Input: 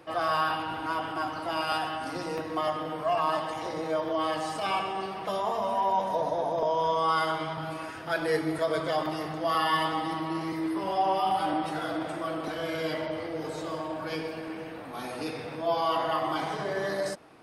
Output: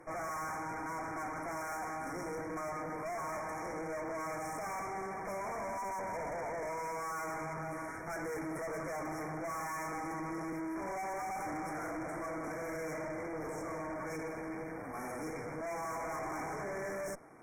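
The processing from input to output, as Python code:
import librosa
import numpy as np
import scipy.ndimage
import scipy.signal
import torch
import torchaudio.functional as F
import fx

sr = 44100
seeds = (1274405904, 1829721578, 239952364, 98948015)

y = fx.tube_stage(x, sr, drive_db=40.0, bias=0.8)
y = fx.brickwall_bandstop(y, sr, low_hz=2400.0, high_hz=5300.0)
y = F.gain(torch.from_numpy(y), 2.5).numpy()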